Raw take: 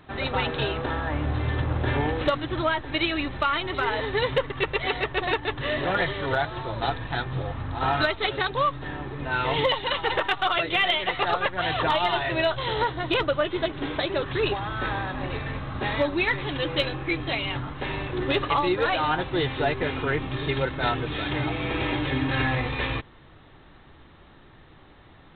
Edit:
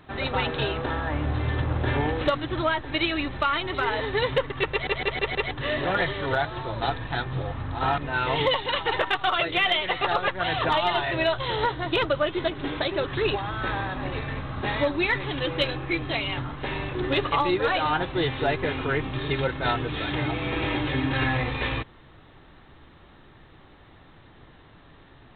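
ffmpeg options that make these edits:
-filter_complex "[0:a]asplit=7[a][b][c][d][e][f][g];[a]atrim=end=4.872[h];[b]atrim=start=4.708:end=4.872[i];[c]atrim=start=4.708:end=4.872[j];[d]atrim=start=4.708:end=4.872[k];[e]atrim=start=4.708:end=4.872[l];[f]atrim=start=5.508:end=7.982[m];[g]atrim=start=9.158[n];[h][i]acrossfade=d=0.004:c1=hsin:c2=hsin[o];[o][j]acrossfade=d=0.004:c1=hsin:c2=hsin[p];[p][k]acrossfade=d=0.004:c1=hsin:c2=hsin[q];[q][l]acrossfade=d=0.004:c1=hsin:c2=hsin[r];[r][m]acrossfade=d=0.004:c1=hsin:c2=hsin[s];[s][n]acrossfade=d=0.004:c1=hsin:c2=hsin"

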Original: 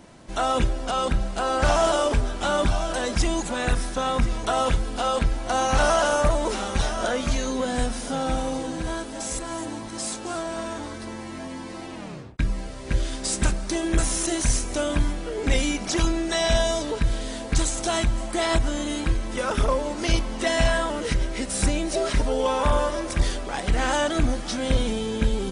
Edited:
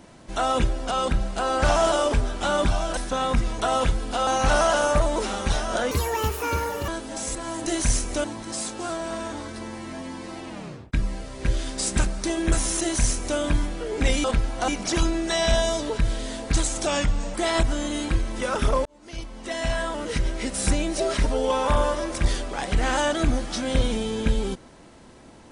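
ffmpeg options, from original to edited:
-filter_complex "[0:a]asplit=12[a][b][c][d][e][f][g][h][i][j][k][l];[a]atrim=end=2.972[m];[b]atrim=start=3.818:end=5.122[n];[c]atrim=start=5.558:end=7.204[o];[d]atrim=start=7.2:end=8.92,asetpts=PTS-STARTPTS,asetrate=78057,aresample=44100,atrim=end_sample=42854,asetpts=PTS-STARTPTS[p];[e]atrim=start=8.916:end=9.702[q];[f]atrim=start=14.258:end=14.842[r];[g]atrim=start=9.698:end=15.702[s];[h]atrim=start=5.118:end=5.562[t];[i]atrim=start=15.698:end=17.884[u];[j]atrim=start=17.88:end=18.3,asetpts=PTS-STARTPTS,asetrate=38367,aresample=44100[v];[k]atrim=start=18.296:end=19.81,asetpts=PTS-STARTPTS,afade=t=out:st=1.51:d=0.004:c=hsin[w];[l]atrim=start=19.81,asetpts=PTS-STARTPTS,afade=t=in:d=1.51[x];[m][n]acrossfade=d=0.004:c1=hsin:c2=hsin[y];[y][o]acrossfade=d=0.004:c1=hsin:c2=hsin[z];[z][p]acrossfade=d=0.004:c1=hsin:c2=hsin[aa];[aa][q]acrossfade=d=0.004:c1=hsin:c2=hsin[ab];[ab][r]acrossfade=d=0.004:c1=hsin:c2=hsin[ac];[ac][s]acrossfade=d=0.004:c1=hsin:c2=hsin[ad];[ad][t]acrossfade=d=0.004:c1=hsin:c2=hsin[ae];[ae][u]acrossfade=d=0.004:c1=hsin:c2=hsin[af];[af][v]acrossfade=d=0.004:c1=hsin:c2=hsin[ag];[w][x]concat=n=2:v=0:a=1[ah];[ag][ah]acrossfade=d=0.004:c1=hsin:c2=hsin"

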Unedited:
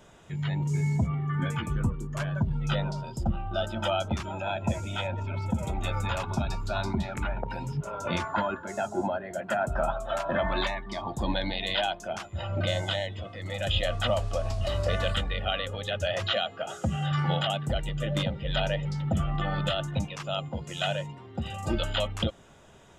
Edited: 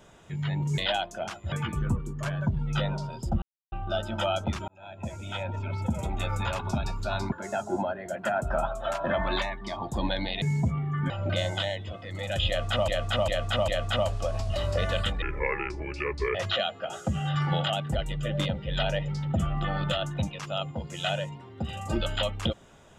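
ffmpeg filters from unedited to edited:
-filter_complex "[0:a]asplit=13[a][b][c][d][e][f][g][h][i][j][k][l][m];[a]atrim=end=0.782[n];[b]atrim=start=11.668:end=12.412[o];[c]atrim=start=1.458:end=3.36,asetpts=PTS-STARTPTS,afade=t=out:st=1.898:d=0.004:c=hsin,apad=pad_dur=0.3[p];[d]atrim=start=3.36:end=4.32,asetpts=PTS-STARTPTS,afade=t=in:d=0.004:c=hsin,afade=t=out:st=0.956:d=0.004:c=hsin[q];[e]atrim=start=4.32:end=6.962,asetpts=PTS-STARTPTS,afade=t=in:d=0.9[r];[f]atrim=start=8.568:end=11.672[s];[g]atrim=start=0.778:end=1.462[t];[h]atrim=start=12.408:end=14.192[u];[i]atrim=start=13.788:end=14.192[v];[j]atrim=start=13.788:end=14.192[w];[k]atrim=start=13.788:end=15.334[x];[l]atrim=start=15.33:end=16.12,asetpts=PTS-STARTPTS,asetrate=30870,aresample=44100[y];[m]atrim=start=16.116[z];[n][o]acrossfade=d=0.004:c1=hsin:c2=hsin[aa];[p][q][r]concat=n=3:v=0:a=1[ab];[aa][ab]acrossfade=d=0.004:c1=hsin:c2=hsin[ac];[ac][s]acrossfade=d=0.004:c1=hsin:c2=hsin[ad];[ad][t]acrossfade=d=0.004:c1=hsin:c2=hsin[ae];[ae][u]acrossfade=d=0.004:c1=hsin:c2=hsin[af];[af][v]acrossfade=d=0.004:c1=hsin:c2=hsin[ag];[ag][w]acrossfade=d=0.004:c1=hsin:c2=hsin[ah];[ah][x]acrossfade=d=0.004:c1=hsin:c2=hsin[ai];[ai][y]acrossfade=d=0.004:c1=hsin:c2=hsin[aj];[aj][z]acrossfade=d=0.004:c1=hsin:c2=hsin"

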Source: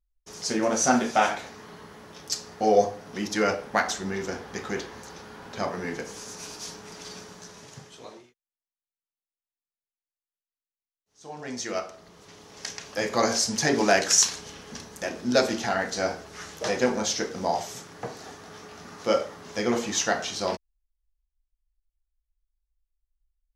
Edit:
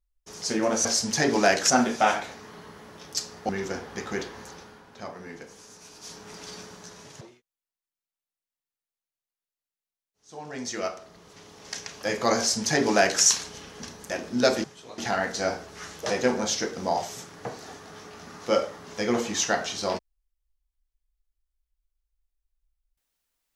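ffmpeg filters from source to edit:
-filter_complex "[0:a]asplit=9[a][b][c][d][e][f][g][h][i];[a]atrim=end=0.852[j];[b]atrim=start=13.298:end=14.152[k];[c]atrim=start=0.848:end=2.642[l];[d]atrim=start=4.068:end=5.43,asetpts=PTS-STARTPTS,afade=t=out:st=0.982:d=0.38:silence=0.354813[m];[e]atrim=start=5.43:end=6.51,asetpts=PTS-STARTPTS,volume=-9dB[n];[f]atrim=start=6.51:end=7.792,asetpts=PTS-STARTPTS,afade=t=in:d=0.38:silence=0.354813[o];[g]atrim=start=8.128:end=15.562[p];[h]atrim=start=7.788:end=8.132[q];[i]atrim=start=15.558[r];[j][k]acrossfade=d=0.004:c1=hsin:c2=hsin[s];[s][l]acrossfade=d=0.004:c1=hsin:c2=hsin[t];[m][n][o]concat=n=3:v=0:a=1[u];[t][u]acrossfade=d=0.004:c1=hsin:c2=hsin[v];[v][p]acrossfade=d=0.004:c1=hsin:c2=hsin[w];[w][q]acrossfade=d=0.004:c1=hsin:c2=hsin[x];[x][r]acrossfade=d=0.004:c1=hsin:c2=hsin"

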